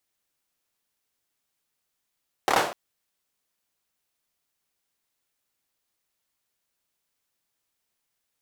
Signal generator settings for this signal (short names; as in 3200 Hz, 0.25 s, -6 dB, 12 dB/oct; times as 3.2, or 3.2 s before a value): hand clap length 0.25 s, apart 27 ms, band 660 Hz, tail 0.44 s